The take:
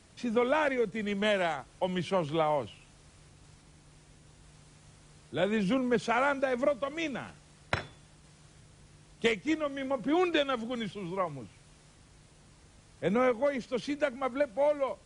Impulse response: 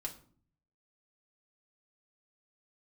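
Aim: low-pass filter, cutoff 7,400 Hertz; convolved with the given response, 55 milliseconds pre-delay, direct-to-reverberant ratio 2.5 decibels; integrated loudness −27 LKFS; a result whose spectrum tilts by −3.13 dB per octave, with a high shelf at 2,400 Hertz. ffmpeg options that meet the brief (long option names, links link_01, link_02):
-filter_complex "[0:a]lowpass=7400,highshelf=frequency=2400:gain=6.5,asplit=2[link_01][link_02];[1:a]atrim=start_sample=2205,adelay=55[link_03];[link_02][link_03]afir=irnorm=-1:irlink=0,volume=-1.5dB[link_04];[link_01][link_04]amix=inputs=2:normalize=0,volume=0.5dB"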